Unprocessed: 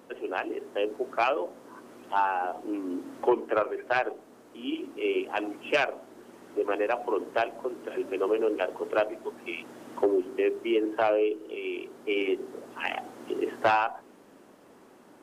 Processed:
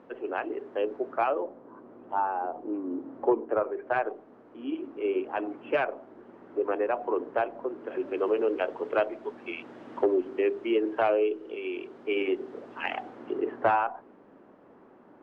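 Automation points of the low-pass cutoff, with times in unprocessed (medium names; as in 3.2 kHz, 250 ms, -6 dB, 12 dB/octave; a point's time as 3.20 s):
0.92 s 2 kHz
1.62 s 1 kHz
3.51 s 1 kHz
4.03 s 1.6 kHz
7.68 s 1.6 kHz
8.26 s 3 kHz
13.00 s 3 kHz
13.47 s 1.6 kHz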